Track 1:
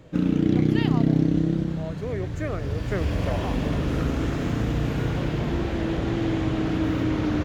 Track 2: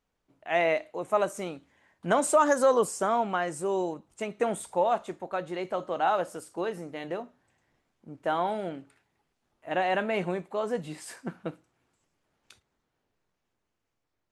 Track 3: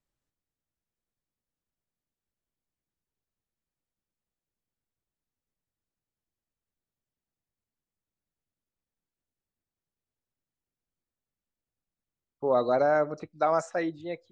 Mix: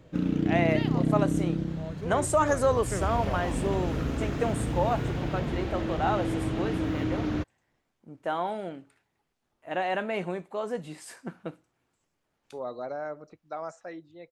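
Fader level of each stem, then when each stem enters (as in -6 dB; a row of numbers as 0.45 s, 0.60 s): -5.0 dB, -2.0 dB, -11.5 dB; 0.00 s, 0.00 s, 0.10 s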